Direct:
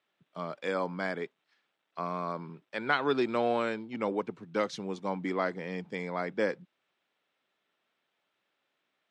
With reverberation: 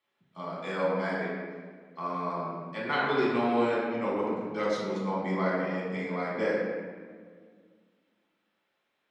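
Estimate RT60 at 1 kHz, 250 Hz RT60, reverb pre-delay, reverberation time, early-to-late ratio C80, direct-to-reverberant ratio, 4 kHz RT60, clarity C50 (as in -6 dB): 1.6 s, 2.5 s, 4 ms, 1.8 s, 1.0 dB, -7.5 dB, 1.0 s, -1.5 dB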